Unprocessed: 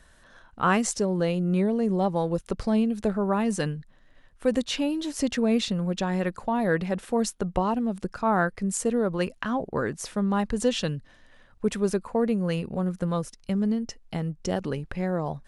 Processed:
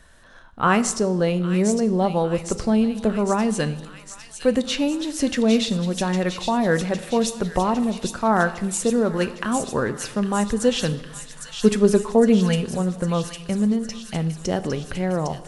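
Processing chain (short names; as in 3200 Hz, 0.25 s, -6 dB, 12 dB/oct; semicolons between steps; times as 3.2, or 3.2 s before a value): 10.92–12.65 comb 4.7 ms, depth 87%; thin delay 0.807 s, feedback 70%, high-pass 2800 Hz, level -5 dB; on a send at -12 dB: reverb RT60 1.1 s, pre-delay 8 ms; on the sum: gain +4 dB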